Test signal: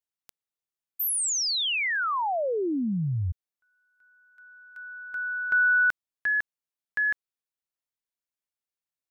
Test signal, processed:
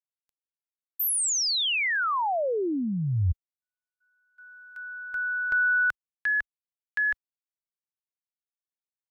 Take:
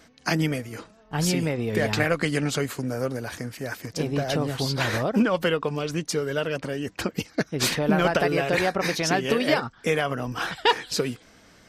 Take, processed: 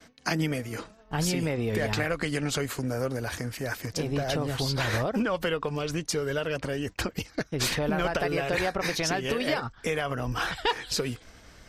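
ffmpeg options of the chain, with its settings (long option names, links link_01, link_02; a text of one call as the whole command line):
ffmpeg -i in.wav -af "acompressor=threshold=-25dB:ratio=2.5:attack=0.97:release=385:knee=6:detection=peak,agate=range=-33dB:threshold=-54dB:ratio=3:release=55:detection=peak,asubboost=boost=4:cutoff=84,volume=2.5dB" out.wav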